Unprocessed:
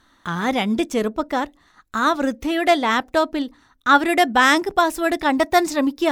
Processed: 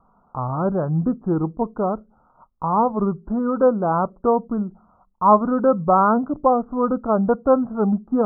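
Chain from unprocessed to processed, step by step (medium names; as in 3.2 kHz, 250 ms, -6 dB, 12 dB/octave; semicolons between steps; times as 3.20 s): steep low-pass 1.8 kHz 72 dB/octave; speed mistake 45 rpm record played at 33 rpm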